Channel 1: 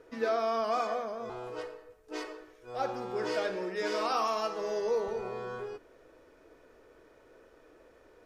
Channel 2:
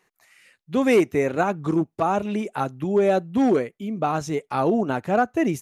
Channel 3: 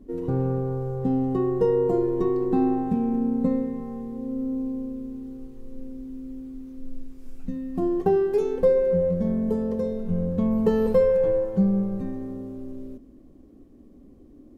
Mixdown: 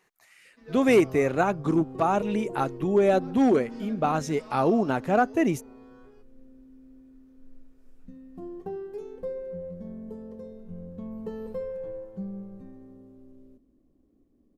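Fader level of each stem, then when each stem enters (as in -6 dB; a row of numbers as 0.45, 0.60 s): -16.5, -1.5, -15.0 dB; 0.45, 0.00, 0.60 s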